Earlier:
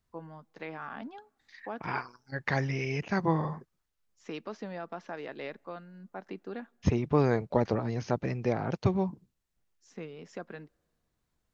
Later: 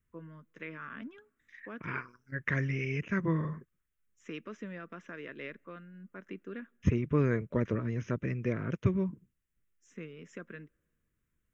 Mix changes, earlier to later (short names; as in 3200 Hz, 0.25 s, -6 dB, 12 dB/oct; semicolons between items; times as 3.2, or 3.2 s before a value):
first voice: add high shelf 4200 Hz +6 dB; master: add fixed phaser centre 1900 Hz, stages 4